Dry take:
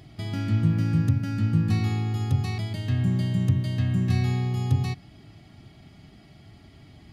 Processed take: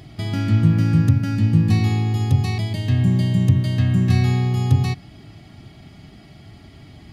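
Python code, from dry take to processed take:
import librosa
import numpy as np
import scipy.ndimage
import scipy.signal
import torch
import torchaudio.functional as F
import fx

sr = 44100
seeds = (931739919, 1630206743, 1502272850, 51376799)

y = fx.peak_eq(x, sr, hz=1400.0, db=-12.5, octaves=0.21, at=(1.35, 3.55))
y = y * 10.0 ** (6.5 / 20.0)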